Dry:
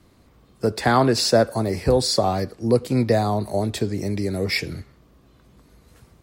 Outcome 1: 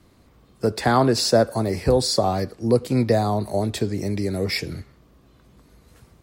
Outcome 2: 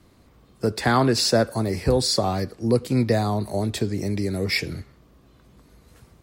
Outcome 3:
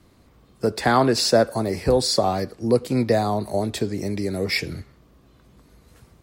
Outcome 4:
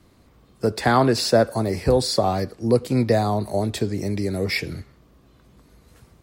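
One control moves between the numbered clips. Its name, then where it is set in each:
dynamic equaliser, frequency: 2,300, 650, 100, 6,400 Hertz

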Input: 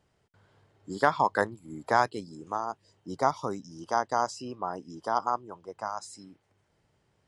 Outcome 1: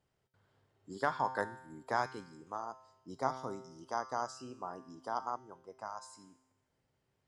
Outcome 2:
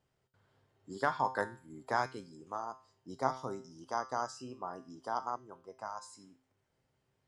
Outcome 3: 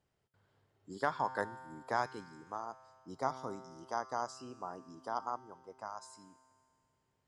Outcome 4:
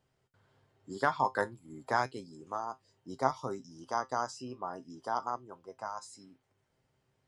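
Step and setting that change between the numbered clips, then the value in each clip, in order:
tuned comb filter, decay: 0.91, 0.42, 2.2, 0.15 seconds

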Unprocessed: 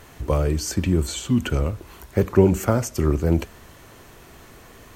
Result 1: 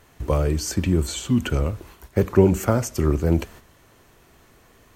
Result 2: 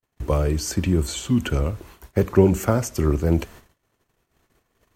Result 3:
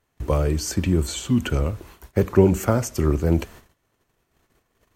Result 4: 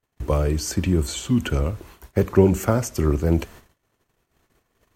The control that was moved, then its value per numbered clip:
noise gate, range: −8, −54, −26, −38 decibels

